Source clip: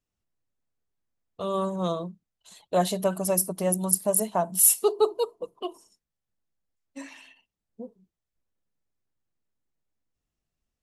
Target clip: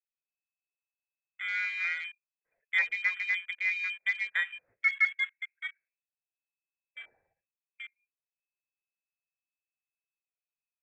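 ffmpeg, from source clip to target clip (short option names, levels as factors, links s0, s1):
-af "lowpass=f=2200:t=q:w=0.5098,lowpass=f=2200:t=q:w=0.6013,lowpass=f=2200:t=q:w=0.9,lowpass=f=2200:t=q:w=2.563,afreqshift=-2600,afwtdn=0.0158,equalizer=f=125:t=o:w=1:g=3,equalizer=f=250:t=o:w=1:g=-4,equalizer=f=500:t=o:w=1:g=9,equalizer=f=1000:t=o:w=1:g=-7,volume=0.668"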